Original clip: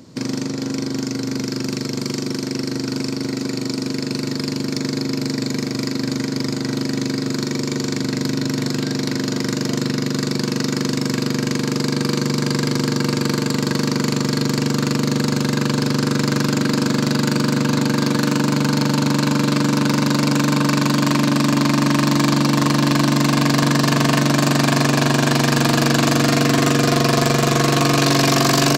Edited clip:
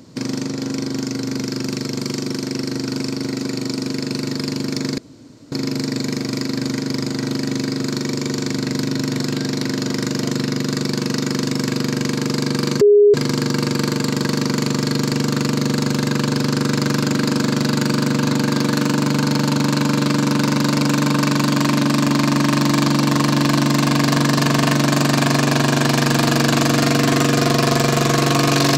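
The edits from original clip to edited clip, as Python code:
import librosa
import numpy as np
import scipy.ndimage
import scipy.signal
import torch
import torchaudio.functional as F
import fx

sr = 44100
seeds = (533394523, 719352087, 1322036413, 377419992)

y = fx.edit(x, sr, fx.insert_room_tone(at_s=4.98, length_s=0.54),
    fx.bleep(start_s=12.27, length_s=0.33, hz=412.0, db=-7.0), tone=tone)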